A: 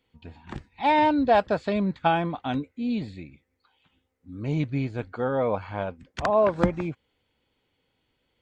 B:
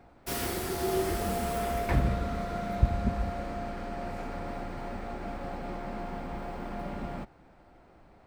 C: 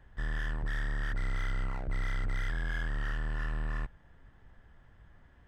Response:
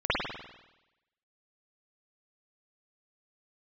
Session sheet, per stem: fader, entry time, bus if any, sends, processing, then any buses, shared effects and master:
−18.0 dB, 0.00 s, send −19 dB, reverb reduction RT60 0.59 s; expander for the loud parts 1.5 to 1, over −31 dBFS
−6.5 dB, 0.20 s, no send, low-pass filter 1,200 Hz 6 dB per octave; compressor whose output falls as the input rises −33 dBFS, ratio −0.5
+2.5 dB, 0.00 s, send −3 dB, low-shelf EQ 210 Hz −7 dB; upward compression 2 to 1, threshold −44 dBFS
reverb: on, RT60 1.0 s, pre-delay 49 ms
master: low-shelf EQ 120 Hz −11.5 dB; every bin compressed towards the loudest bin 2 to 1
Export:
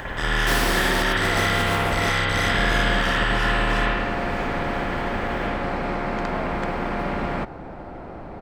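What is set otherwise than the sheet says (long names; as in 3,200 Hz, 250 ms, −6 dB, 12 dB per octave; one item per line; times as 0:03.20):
stem B −6.5 dB → +4.0 dB
master: missing low-shelf EQ 120 Hz −11.5 dB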